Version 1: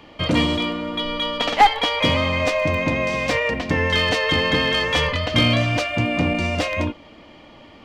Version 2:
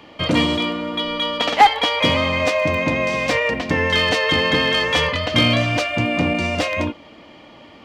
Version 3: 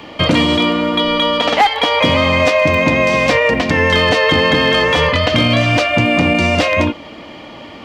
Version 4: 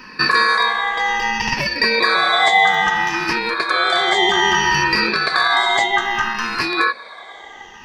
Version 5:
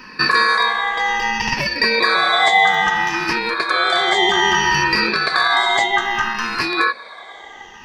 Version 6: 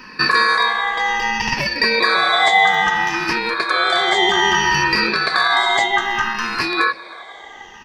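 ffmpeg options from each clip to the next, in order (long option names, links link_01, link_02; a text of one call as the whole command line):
ffmpeg -i in.wav -af "highpass=frequency=110:poles=1,volume=2dB" out.wav
ffmpeg -i in.wav -filter_complex "[0:a]acrossover=split=1400|5800[link_01][link_02][link_03];[link_01]acompressor=threshold=-21dB:ratio=4[link_04];[link_02]acompressor=threshold=-27dB:ratio=4[link_05];[link_03]acompressor=threshold=-48dB:ratio=4[link_06];[link_04][link_05][link_06]amix=inputs=3:normalize=0,alimiter=level_in=11dB:limit=-1dB:release=50:level=0:latency=1,volume=-1dB" out.wav
ffmpeg -i in.wav -af "afftfilt=real='re*pow(10,23/40*sin(2*PI*(0.62*log(max(b,1)*sr/1024/100)/log(2)-(-0.62)*(pts-256)/sr)))':imag='im*pow(10,23/40*sin(2*PI*(0.62*log(max(b,1)*sr/1024/100)/log(2)-(-0.62)*(pts-256)/sr)))':win_size=1024:overlap=0.75,aeval=exprs='val(0)*sin(2*PI*1400*n/s)':channel_layout=same,volume=-6.5dB" out.wav
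ffmpeg -i in.wav -af anull out.wav
ffmpeg -i in.wav -filter_complex "[0:a]asplit=2[link_01][link_02];[link_02]adelay=314.9,volume=-23dB,highshelf=frequency=4000:gain=-7.08[link_03];[link_01][link_03]amix=inputs=2:normalize=0" out.wav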